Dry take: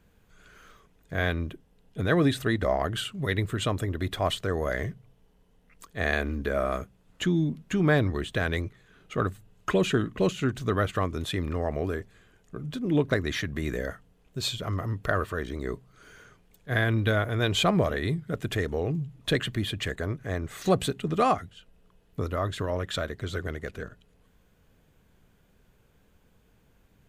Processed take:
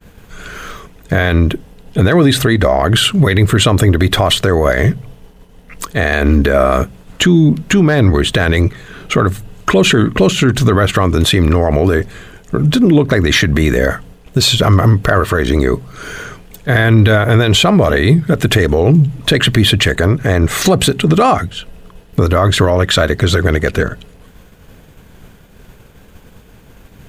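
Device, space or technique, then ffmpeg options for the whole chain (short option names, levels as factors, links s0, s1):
loud club master: -af "acompressor=threshold=0.0251:ratio=1.5,asoftclip=type=hard:threshold=0.15,alimiter=level_in=18.8:limit=0.891:release=50:level=0:latency=1,agate=range=0.0224:threshold=0.0251:ratio=3:detection=peak,volume=0.891"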